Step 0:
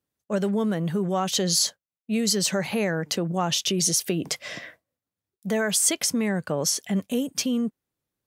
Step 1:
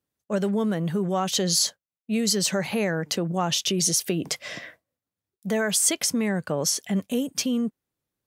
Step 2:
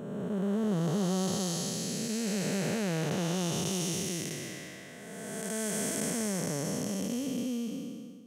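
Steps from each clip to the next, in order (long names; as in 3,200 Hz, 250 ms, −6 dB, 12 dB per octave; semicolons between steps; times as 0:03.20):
no processing that can be heard
spectrum smeared in time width 821 ms; parametric band 4,700 Hz −5.5 dB 0.47 octaves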